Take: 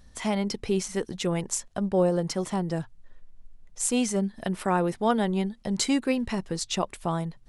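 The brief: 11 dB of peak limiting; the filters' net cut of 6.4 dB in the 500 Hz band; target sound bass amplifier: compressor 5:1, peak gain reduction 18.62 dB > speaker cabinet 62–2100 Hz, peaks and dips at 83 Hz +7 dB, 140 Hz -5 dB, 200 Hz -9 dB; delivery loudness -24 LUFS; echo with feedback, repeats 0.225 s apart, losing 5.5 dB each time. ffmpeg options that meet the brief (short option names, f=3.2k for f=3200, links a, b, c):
-af "equalizer=f=500:t=o:g=-8,alimiter=limit=-21dB:level=0:latency=1,aecho=1:1:225|450|675|900|1125|1350|1575:0.531|0.281|0.149|0.079|0.0419|0.0222|0.0118,acompressor=threshold=-45dB:ratio=5,highpass=f=62:w=0.5412,highpass=f=62:w=1.3066,equalizer=f=83:t=q:w=4:g=7,equalizer=f=140:t=q:w=4:g=-5,equalizer=f=200:t=q:w=4:g=-9,lowpass=f=2.1k:w=0.5412,lowpass=f=2.1k:w=1.3066,volume=27dB"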